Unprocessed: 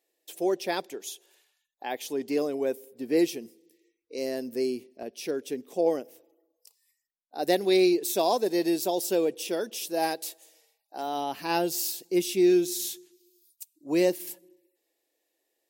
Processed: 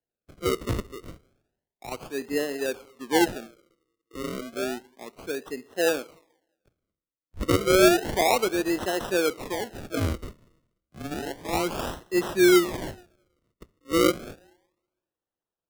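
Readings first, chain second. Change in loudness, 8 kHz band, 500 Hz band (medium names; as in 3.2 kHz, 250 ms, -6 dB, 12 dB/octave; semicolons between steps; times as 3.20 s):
+2.0 dB, +0.5 dB, +1.0 dB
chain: two-slope reverb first 0.64 s, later 2 s, from -18 dB, DRR 15.5 dB; decimation with a swept rate 37×, swing 100% 0.31 Hz; three bands expanded up and down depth 40%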